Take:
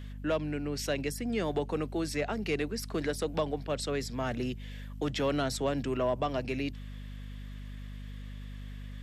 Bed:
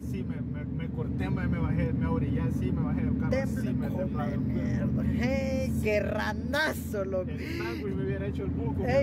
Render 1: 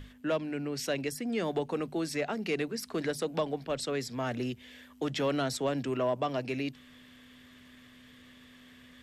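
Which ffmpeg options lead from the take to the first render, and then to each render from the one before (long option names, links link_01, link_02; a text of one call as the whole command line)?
ffmpeg -i in.wav -af "bandreject=frequency=50:width_type=h:width=6,bandreject=frequency=100:width_type=h:width=6,bandreject=frequency=150:width_type=h:width=6,bandreject=frequency=200:width_type=h:width=6" out.wav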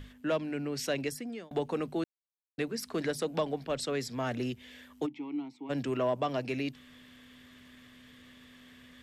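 ffmpeg -i in.wav -filter_complex "[0:a]asplit=3[link_01][link_02][link_03];[link_01]afade=type=out:start_time=5.05:duration=0.02[link_04];[link_02]asplit=3[link_05][link_06][link_07];[link_05]bandpass=frequency=300:width_type=q:width=8,volume=0dB[link_08];[link_06]bandpass=frequency=870:width_type=q:width=8,volume=-6dB[link_09];[link_07]bandpass=frequency=2240:width_type=q:width=8,volume=-9dB[link_10];[link_08][link_09][link_10]amix=inputs=3:normalize=0,afade=type=in:start_time=5.05:duration=0.02,afade=type=out:start_time=5.69:duration=0.02[link_11];[link_03]afade=type=in:start_time=5.69:duration=0.02[link_12];[link_04][link_11][link_12]amix=inputs=3:normalize=0,asplit=4[link_13][link_14][link_15][link_16];[link_13]atrim=end=1.51,asetpts=PTS-STARTPTS,afade=type=out:start_time=1.07:duration=0.44[link_17];[link_14]atrim=start=1.51:end=2.04,asetpts=PTS-STARTPTS,afade=type=in:duration=0.004:curve=hsin,afade=type=out:start_time=0.526:duration=0.004:curve=hsin[link_18];[link_15]atrim=start=2.04:end=2.58,asetpts=PTS-STARTPTS,volume=0[link_19];[link_16]atrim=start=2.58,asetpts=PTS-STARTPTS,afade=type=in:duration=0.004:curve=hsin[link_20];[link_17][link_18][link_19][link_20]concat=n=4:v=0:a=1" out.wav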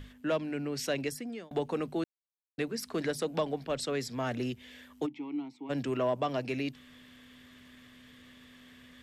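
ffmpeg -i in.wav -af anull out.wav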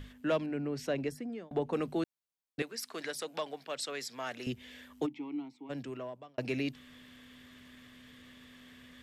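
ffmpeg -i in.wav -filter_complex "[0:a]asettb=1/sr,asplit=3[link_01][link_02][link_03];[link_01]atrim=end=0.464[link_04];[link_02]atrim=start=0.46:end=1.73,asetpts=PTS-STARTPTS,afade=type=in:duration=0.004:curve=qsin,afade=type=out:start_time=1.266:duration=0.004:curve=qsin,highshelf=frequency=2100:gain=-11[link_05];[link_03]atrim=start=1.726[link_06];[link_04][link_05]acrossfade=duration=0.004:curve1=hsin:curve2=qsin[link_07];[link_07][link_06]acrossfade=duration=0.004:curve1=qsin:curve2=hsin,asettb=1/sr,asplit=3[link_08][link_09][link_10];[link_08]atrim=end=2.624[link_11];[link_09]atrim=start=2.62:end=4.47,asetpts=PTS-STARTPTS,afade=type=in:duration=0.004:curve=qsin,afade=type=out:start_time=1.846:duration=0.004:curve=qsin,highpass=frequency=1100:poles=1[link_12];[link_10]atrim=start=4.466[link_13];[link_11][link_12]acrossfade=duration=0.004:curve1=hsin:curve2=qsin[link_14];[link_14][link_13]acrossfade=duration=0.004:curve1=qsin:curve2=hsin,asplit=2[link_15][link_16];[link_15]atrim=end=6.38,asetpts=PTS-STARTPTS,afade=type=out:start_time=5.03:duration=1.35[link_17];[link_16]atrim=start=6.38,asetpts=PTS-STARTPTS,afade=type=in:duration=0.004:curve=hsin[link_18];[link_17][link_18]concat=n=2:v=0:a=1" out.wav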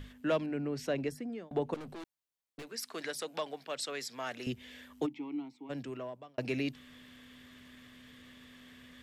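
ffmpeg -i in.wav -filter_complex "[0:a]asettb=1/sr,asplit=3[link_01][link_02][link_03];[link_01]atrim=end=1.744[link_04];[link_02]atrim=start=1.74:end=2.67,asetpts=PTS-STARTPTS,afade=type=in:duration=0.004:curve=qsin,afade=type=out:start_time=0.926:duration=0.004:curve=qsin,aeval=exprs='(tanh(141*val(0)+0.25)-tanh(0.25))/141':channel_layout=same[link_05];[link_03]atrim=start=2.666[link_06];[link_04][link_05]acrossfade=duration=0.004:curve1=hsin:curve2=qsin[link_07];[link_07][link_06]acrossfade=duration=0.004:curve1=qsin:curve2=hsin" out.wav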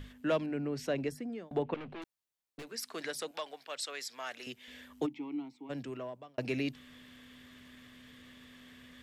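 ffmpeg -i in.wav -filter_complex "[0:a]asettb=1/sr,asplit=3[link_01][link_02][link_03];[link_01]atrim=end=1.624[link_04];[link_02]atrim=start=1.62:end=2.02,asetpts=PTS-STARTPTS,afade=type=in:duration=0.004:curve=qsin,afade=type=out:start_time=0.396:duration=0.004:curve=qsin,lowpass=frequency=2700:width_type=q:width=2.1[link_05];[link_03]atrim=start=2.016[link_06];[link_04][link_05]acrossfade=duration=0.004:curve1=hsin:curve2=qsin[link_07];[link_07][link_06]acrossfade=duration=0.004:curve1=qsin:curve2=hsin,asettb=1/sr,asplit=3[link_08][link_09][link_10];[link_08]atrim=end=3.314[link_11];[link_09]atrim=start=3.31:end=4.68,asetpts=PTS-STARTPTS,afade=type=in:duration=0.004:curve=qsin,afade=type=out:start_time=1.366:duration=0.004:curve=qsin,highpass=frequency=790:poles=1[link_12];[link_10]atrim=start=4.676[link_13];[link_11][link_12]acrossfade=duration=0.004:curve1=hsin:curve2=qsin[link_14];[link_14][link_13]acrossfade=duration=0.004:curve1=qsin:curve2=hsin" out.wav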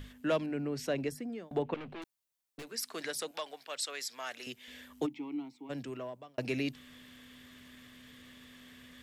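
ffmpeg -i in.wav -af "highshelf=frequency=5800:gain=5.5" out.wav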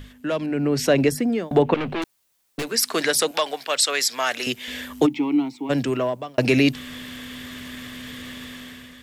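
ffmpeg -i in.wav -filter_complex "[0:a]asplit=2[link_01][link_02];[link_02]alimiter=level_in=4.5dB:limit=-24dB:level=0:latency=1:release=69,volume=-4.5dB,volume=0dB[link_03];[link_01][link_03]amix=inputs=2:normalize=0,dynaudnorm=framelen=180:gausssize=7:maxgain=12dB" out.wav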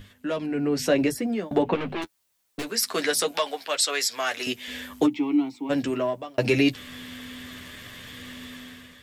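ffmpeg -i in.wav -af "flanger=delay=9.9:depth=1.2:regen=-23:speed=0.76:shape=sinusoidal" out.wav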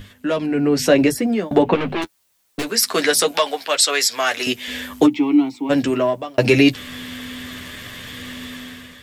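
ffmpeg -i in.wav -af "volume=7.5dB" out.wav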